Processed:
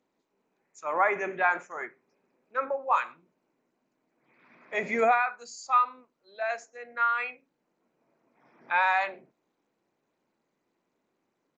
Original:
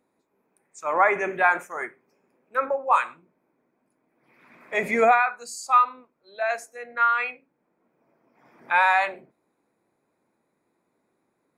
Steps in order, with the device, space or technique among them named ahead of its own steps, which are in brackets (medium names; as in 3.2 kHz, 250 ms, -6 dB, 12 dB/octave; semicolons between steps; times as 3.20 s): Bluetooth headset (high-pass 100 Hz 12 dB/octave; resampled via 16 kHz; trim -5 dB; SBC 64 kbps 16 kHz)